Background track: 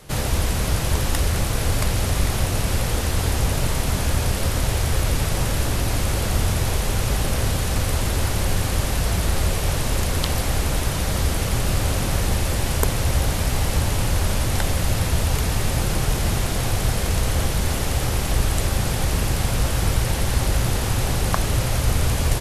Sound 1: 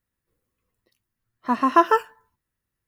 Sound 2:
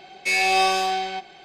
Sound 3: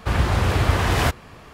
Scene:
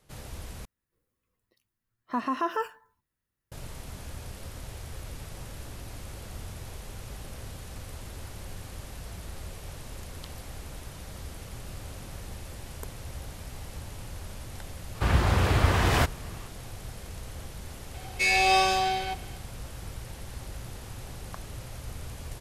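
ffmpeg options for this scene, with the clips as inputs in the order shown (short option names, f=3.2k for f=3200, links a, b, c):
-filter_complex "[0:a]volume=-19.5dB[a];[1:a]alimiter=limit=-16dB:level=0:latency=1:release=64[b];[a]asplit=2[c][d];[c]atrim=end=0.654[e];[b]atrim=end=2.87,asetpts=PTS-STARTPTS,volume=-3.5dB[f];[d]atrim=start=3.516[g];[3:a]atrim=end=1.53,asetpts=PTS-STARTPTS,volume=-3.5dB,afade=t=in:d=0.004:c=hsin,afade=t=out:st=1.526:d=0.004:c=hsin,adelay=14950[h];[2:a]atrim=end=1.44,asetpts=PTS-STARTPTS,volume=-2.5dB,afade=t=in:d=0.004:c=hsin,afade=t=out:st=1.436:d=0.004:c=hsin,adelay=17940[i];[e][f]acrossfade=d=0.004:c1=hsin:c2=hsin[j];[j][g]acrossfade=d=0.004:c1=hsin:c2=hsin[k];[k][h][i]amix=inputs=3:normalize=0"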